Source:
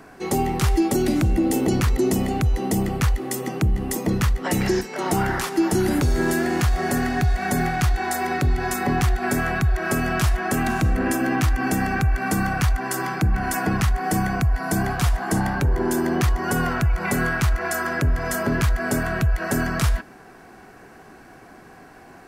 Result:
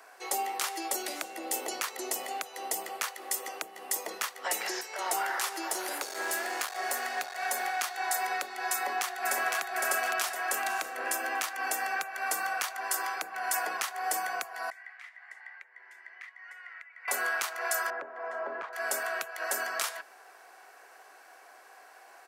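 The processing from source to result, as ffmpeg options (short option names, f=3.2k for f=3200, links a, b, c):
-filter_complex "[0:a]asettb=1/sr,asplit=3[a][b][c];[a]atrim=end=5.684[d];[b]atrim=start=5.68:end=7.77,asetpts=PTS-STARTPTS,afade=t=in:d=0.004:c=qsin,afade=t=out:st=2.086:d=0.004:c=qsin,aeval=exprs='clip(val(0),-1,0.106)':c=same[e];[c]atrim=start=7.766[f];[d][e]acrossfade=d=0.004:c1=hsin:c2=qsin[g];[g][f]acrossfade=d=0.004:c1=qsin:c2=hsin,asplit=2[h][i];[i]afade=t=in:st=8.74:d=0.01,afade=t=out:st=9.62:d=0.01,aecho=0:1:510|1020|1530|2040|2550:0.749894|0.299958|0.119983|0.0479932|0.0191973[j];[h][j]amix=inputs=2:normalize=0,asettb=1/sr,asplit=3[k][l][m];[k]atrim=end=14.704[n];[l]atrim=start=14.7:end=17.08,asetpts=PTS-STARTPTS,afade=t=in:d=0.004:c=qsin,afade=t=out:st=2.376:d=0.004:c=qsin,bandpass=f=2k:t=q:w=11[o];[m]atrim=start=17.076[p];[n][o]acrossfade=d=0.004:c1=hsin:c2=qsin[q];[q][p]acrossfade=d=0.004:c1=qsin:c2=hsin,asettb=1/sr,asplit=3[r][s][t];[r]atrim=end=17.904[u];[s]atrim=start=17.9:end=18.73,asetpts=PTS-STARTPTS,afade=t=in:d=0.004:c=qsin,afade=t=out:st=0.826:d=0.004:c=qsin,lowpass=1.2k[v];[t]atrim=start=18.726[w];[u][v]acrossfade=d=0.004:c1=hsin:c2=qsin[x];[x][w]acrossfade=d=0.004:c1=qsin:c2=hsin,highpass=f=540:w=0.5412,highpass=f=540:w=1.3066,highshelf=f=4.1k:g=5.5,volume=-6dB"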